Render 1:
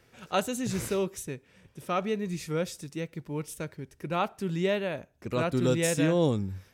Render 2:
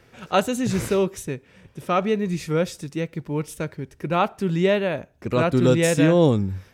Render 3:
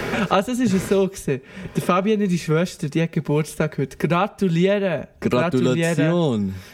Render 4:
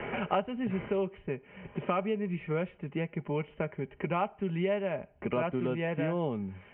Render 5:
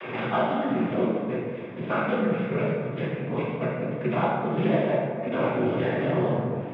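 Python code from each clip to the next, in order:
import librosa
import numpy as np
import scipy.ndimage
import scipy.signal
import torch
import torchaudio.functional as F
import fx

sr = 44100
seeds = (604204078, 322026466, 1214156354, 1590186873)

y1 = fx.high_shelf(x, sr, hz=4500.0, db=-6.5)
y1 = y1 * librosa.db_to_amplitude(8.0)
y2 = y1 + 0.41 * np.pad(y1, (int(4.9 * sr / 1000.0), 0))[:len(y1)]
y2 = fx.band_squash(y2, sr, depth_pct=100)
y3 = scipy.signal.sosfilt(scipy.signal.cheby1(6, 6, 3100.0, 'lowpass', fs=sr, output='sos'), y2)
y3 = y3 * librosa.db_to_amplitude(-8.0)
y4 = fx.noise_vocoder(y3, sr, seeds[0], bands=16)
y4 = fx.rev_plate(y4, sr, seeds[1], rt60_s=2.0, hf_ratio=0.45, predelay_ms=0, drr_db=-5.5)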